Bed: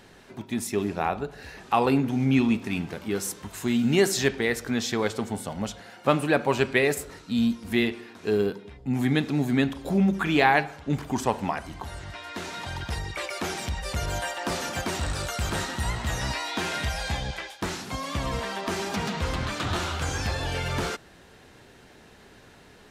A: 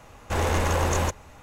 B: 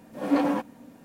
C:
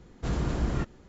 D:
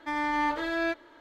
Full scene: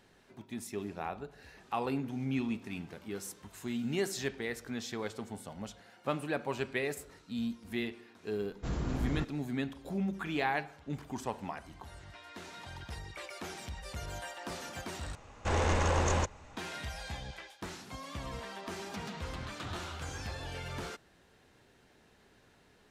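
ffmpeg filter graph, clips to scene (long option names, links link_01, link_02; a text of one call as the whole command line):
ffmpeg -i bed.wav -i cue0.wav -i cue1.wav -i cue2.wav -filter_complex "[0:a]volume=-12dB[link_01];[1:a]lowpass=frequency=8000:width=0.5412,lowpass=frequency=8000:width=1.3066[link_02];[link_01]asplit=2[link_03][link_04];[link_03]atrim=end=15.154[link_05];[link_02]atrim=end=1.42,asetpts=PTS-STARTPTS,volume=-5dB[link_06];[link_04]atrim=start=16.566[link_07];[3:a]atrim=end=1.08,asetpts=PTS-STARTPTS,volume=-6dB,afade=type=in:duration=0.004:curve=hsin,afade=type=out:start_time=1.076:duration=0.004:curve=hsin,adelay=8400[link_08];[link_05][link_06]acrossfade=duration=0.004:curve1=hsin:curve2=hsin[link_09];[link_09][link_07]acrossfade=duration=0.004:curve1=hsin:curve2=hsin[link_10];[link_10][link_08]amix=inputs=2:normalize=0" out.wav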